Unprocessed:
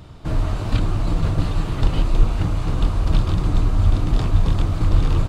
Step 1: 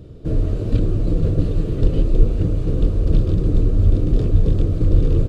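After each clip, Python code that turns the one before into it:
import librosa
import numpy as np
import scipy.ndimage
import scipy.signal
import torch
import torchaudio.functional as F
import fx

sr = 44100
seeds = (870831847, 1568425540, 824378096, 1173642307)

y = fx.low_shelf_res(x, sr, hz=640.0, db=10.5, q=3.0)
y = fx.notch(y, sr, hz=2100.0, q=22.0)
y = F.gain(torch.from_numpy(y), -9.0).numpy()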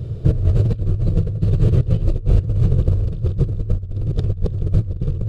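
y = fx.peak_eq(x, sr, hz=110.0, db=12.5, octaves=0.79)
y = fx.over_compress(y, sr, threshold_db=-16.0, ratio=-0.5)
y = fx.peak_eq(y, sr, hz=270.0, db=-12.5, octaves=0.36)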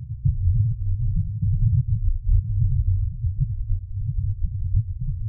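y = np.sign(x) * np.maximum(np.abs(x) - 10.0 ** (-36.0 / 20.0), 0.0)
y = fx.add_hum(y, sr, base_hz=60, snr_db=18)
y = fx.spec_topn(y, sr, count=4)
y = F.gain(torch.from_numpy(y), -2.5).numpy()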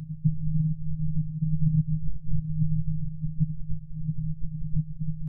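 y = fx.robotise(x, sr, hz=156.0)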